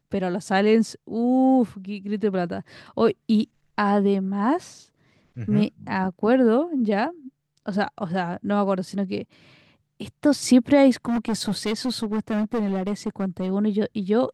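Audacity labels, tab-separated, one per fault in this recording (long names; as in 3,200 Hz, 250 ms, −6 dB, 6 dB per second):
11.050000	13.510000	clipping −20.5 dBFS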